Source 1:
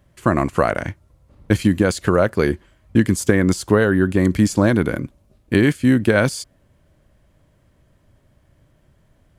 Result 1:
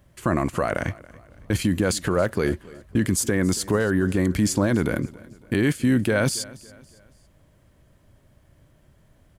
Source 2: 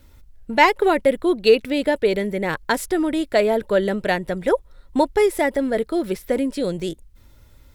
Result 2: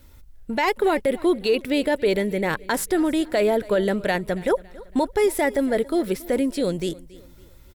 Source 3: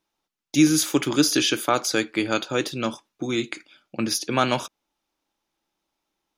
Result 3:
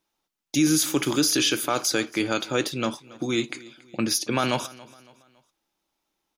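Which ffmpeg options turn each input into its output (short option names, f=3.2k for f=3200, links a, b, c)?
-af "highshelf=f=7.8k:g=4.5,alimiter=limit=-12dB:level=0:latency=1:release=22,aecho=1:1:279|558|837:0.0891|0.0374|0.0157"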